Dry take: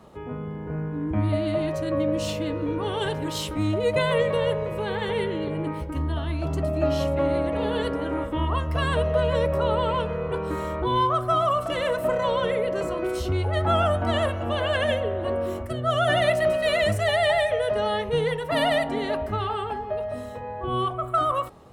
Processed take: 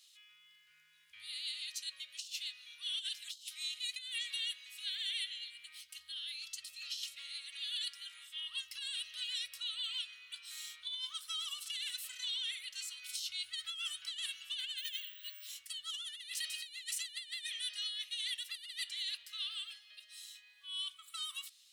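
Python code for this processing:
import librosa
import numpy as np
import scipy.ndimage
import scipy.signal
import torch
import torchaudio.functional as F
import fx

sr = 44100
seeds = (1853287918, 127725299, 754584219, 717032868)

y = fx.resample_bad(x, sr, factor=2, down='filtered', up='hold', at=(14.78, 15.49))
y = scipy.signal.sosfilt(scipy.signal.cheby2(4, 70, 820.0, 'highpass', fs=sr, output='sos'), y)
y = fx.high_shelf(y, sr, hz=6700.0, db=-9.0)
y = fx.over_compress(y, sr, threshold_db=-47.0, ratio=-0.5)
y = F.gain(torch.from_numpy(y), 7.5).numpy()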